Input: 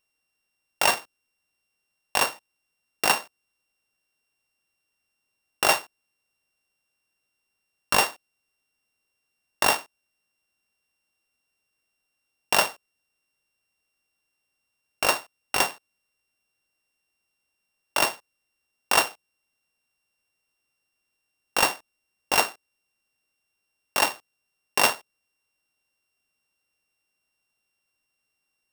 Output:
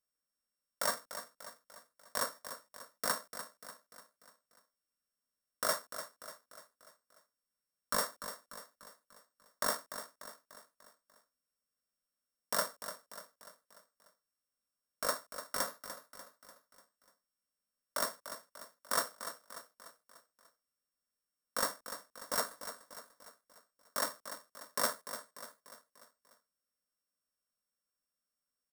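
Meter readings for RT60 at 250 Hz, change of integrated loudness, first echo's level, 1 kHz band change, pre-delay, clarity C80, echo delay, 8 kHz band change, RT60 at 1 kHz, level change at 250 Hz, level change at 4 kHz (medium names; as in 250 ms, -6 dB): no reverb, -14.0 dB, -11.0 dB, -12.5 dB, no reverb, no reverb, 295 ms, -9.0 dB, no reverb, -11.5 dB, -13.5 dB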